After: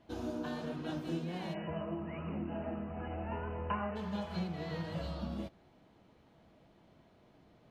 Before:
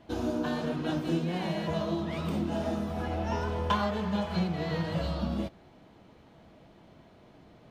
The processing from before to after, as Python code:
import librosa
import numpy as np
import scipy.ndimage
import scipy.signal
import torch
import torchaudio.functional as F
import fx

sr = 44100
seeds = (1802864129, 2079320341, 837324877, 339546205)

y = fx.brickwall_lowpass(x, sr, high_hz=3000.0, at=(1.53, 3.95), fade=0.02)
y = y * 10.0 ** (-8.0 / 20.0)